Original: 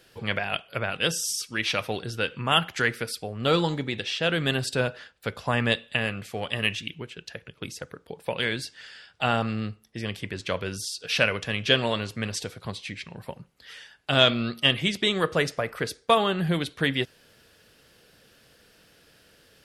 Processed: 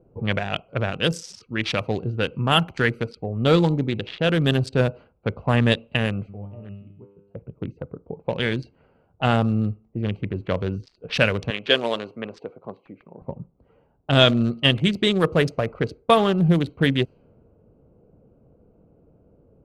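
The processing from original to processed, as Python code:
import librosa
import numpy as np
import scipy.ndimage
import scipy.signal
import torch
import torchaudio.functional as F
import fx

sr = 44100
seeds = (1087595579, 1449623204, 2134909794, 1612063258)

y = fx.comb_fb(x, sr, f0_hz=100.0, decay_s=0.88, harmonics='all', damping=0.0, mix_pct=90, at=(6.28, 7.34), fade=0.02)
y = fx.highpass(y, sr, hz=370.0, slope=12, at=(11.5, 13.22))
y = fx.wiener(y, sr, points=25)
y = fx.env_lowpass(y, sr, base_hz=910.0, full_db=-23.0)
y = fx.low_shelf(y, sr, hz=420.0, db=7.5)
y = y * 10.0 ** (2.0 / 20.0)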